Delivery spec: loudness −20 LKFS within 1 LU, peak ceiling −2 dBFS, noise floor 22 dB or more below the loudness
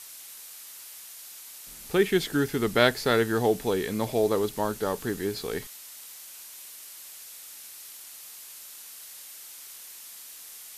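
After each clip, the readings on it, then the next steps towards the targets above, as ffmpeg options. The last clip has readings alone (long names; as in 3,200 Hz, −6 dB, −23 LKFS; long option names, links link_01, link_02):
background noise floor −45 dBFS; target noise floor −48 dBFS; integrated loudness −26.0 LKFS; sample peak −6.5 dBFS; target loudness −20.0 LKFS
→ -af "afftdn=noise_reduction=6:noise_floor=-45"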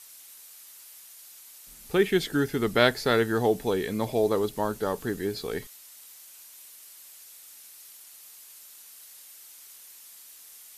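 background noise floor −50 dBFS; integrated loudness −26.5 LKFS; sample peak −6.5 dBFS; target loudness −20.0 LKFS
→ -af "volume=6.5dB,alimiter=limit=-2dB:level=0:latency=1"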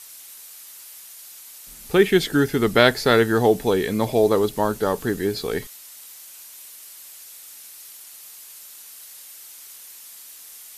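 integrated loudness −20.0 LKFS; sample peak −2.0 dBFS; background noise floor −43 dBFS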